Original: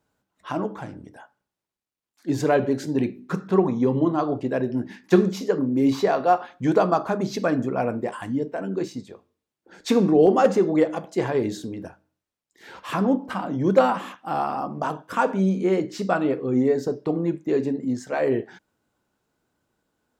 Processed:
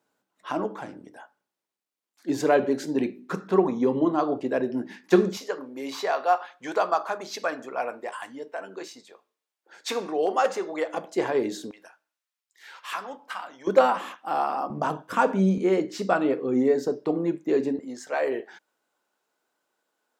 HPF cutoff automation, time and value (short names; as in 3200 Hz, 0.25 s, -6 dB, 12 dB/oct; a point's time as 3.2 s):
250 Hz
from 5.37 s 710 Hz
from 10.94 s 290 Hz
from 11.71 s 1200 Hz
from 13.67 s 360 Hz
from 14.7 s 96 Hz
from 15.58 s 230 Hz
from 17.79 s 500 Hz